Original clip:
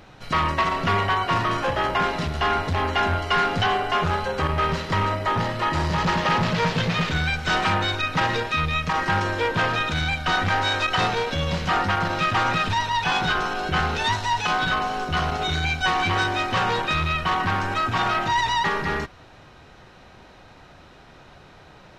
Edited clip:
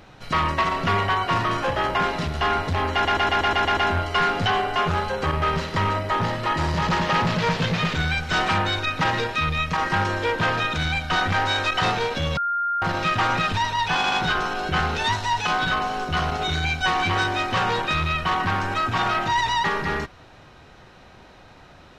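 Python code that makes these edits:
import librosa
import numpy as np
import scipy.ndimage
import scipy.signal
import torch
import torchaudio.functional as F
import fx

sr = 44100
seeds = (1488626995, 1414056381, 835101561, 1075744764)

y = fx.edit(x, sr, fx.stutter(start_s=2.93, slice_s=0.12, count=8),
    fx.bleep(start_s=11.53, length_s=0.45, hz=1400.0, db=-21.0),
    fx.stutter(start_s=13.12, slice_s=0.08, count=3), tone=tone)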